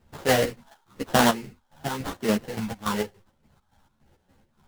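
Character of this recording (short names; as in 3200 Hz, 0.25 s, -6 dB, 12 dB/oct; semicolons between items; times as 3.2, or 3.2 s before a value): phasing stages 6, 1 Hz, lowest notch 380–2600 Hz; aliases and images of a low sample rate 2400 Hz, jitter 20%; chopped level 3.5 Hz, depth 65%, duty 55%; a shimmering, thickened sound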